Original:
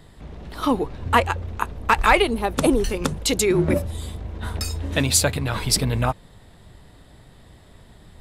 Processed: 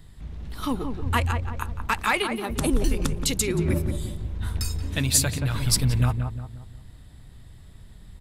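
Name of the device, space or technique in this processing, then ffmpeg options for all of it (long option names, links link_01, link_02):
smiley-face EQ: -filter_complex "[0:a]asettb=1/sr,asplit=3[link_01][link_02][link_03];[link_01]atrim=end=1.874[link_04];[link_02]atrim=start=1.87:end=2.5,asetpts=PTS-STARTPTS,afade=type=in:duration=0.004:curve=qsin,afade=type=out:start_time=0.626:duration=0.004:curve=qsin,highpass=frequency=170:width=0.5412,highpass=frequency=170:width=1.3066[link_05];[link_03]atrim=start=2.496[link_06];[link_04][link_05]acrossfade=duration=0.004:curve1=hsin:curve2=qsin[link_07];[link_07][link_06]acrossfade=duration=0.004:curve1=qsin:curve2=hsin,lowshelf=frequency=140:gain=8.5,equalizer=frequency=570:width_type=o:width=1.9:gain=-7.5,highshelf=frequency=8100:gain=6,asplit=2[link_08][link_09];[link_09]adelay=177,lowpass=frequency=1300:poles=1,volume=-5.5dB,asplit=2[link_10][link_11];[link_11]adelay=177,lowpass=frequency=1300:poles=1,volume=0.44,asplit=2[link_12][link_13];[link_13]adelay=177,lowpass=frequency=1300:poles=1,volume=0.44,asplit=2[link_14][link_15];[link_15]adelay=177,lowpass=frequency=1300:poles=1,volume=0.44,asplit=2[link_16][link_17];[link_17]adelay=177,lowpass=frequency=1300:poles=1,volume=0.44[link_18];[link_08][link_10][link_12][link_14][link_16][link_18]amix=inputs=6:normalize=0,volume=-4.5dB"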